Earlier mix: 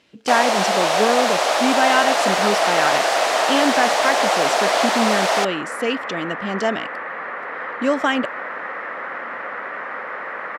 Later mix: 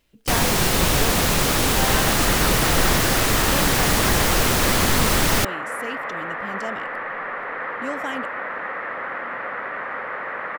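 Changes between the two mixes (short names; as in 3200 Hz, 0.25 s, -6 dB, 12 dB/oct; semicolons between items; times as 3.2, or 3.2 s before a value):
speech -11.5 dB; first sound: remove resonant high-pass 660 Hz, resonance Q 4; master: remove BPF 180–6300 Hz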